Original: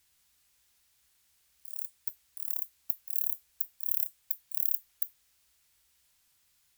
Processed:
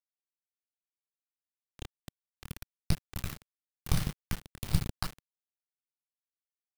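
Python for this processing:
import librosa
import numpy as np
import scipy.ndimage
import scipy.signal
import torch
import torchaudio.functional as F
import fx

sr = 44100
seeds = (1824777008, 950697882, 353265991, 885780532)

y = fx.cycle_switch(x, sr, every=3, mode='muted')
y = fx.low_shelf_res(y, sr, hz=220.0, db=11.5, q=3.0)
y = fx.room_shoebox(y, sr, seeds[0], volume_m3=600.0, walls='mixed', distance_m=3.7)
y = fx.transient(y, sr, attack_db=8, sustain_db=2)
y = fx.env_lowpass(y, sr, base_hz=440.0, full_db=-23.0)
y = scipy.signal.sosfilt(scipy.signal.butter(2, 8500.0, 'lowpass', fs=sr, output='sos'), y)
y = fx.echo_diffused(y, sr, ms=457, feedback_pct=54, wet_db=-9.0)
y = fx.quant_dither(y, sr, seeds[1], bits=6, dither='none')
y = fx.bass_treble(y, sr, bass_db=14, treble_db=-9)
y = y * 10.0 ** (6.0 / 20.0)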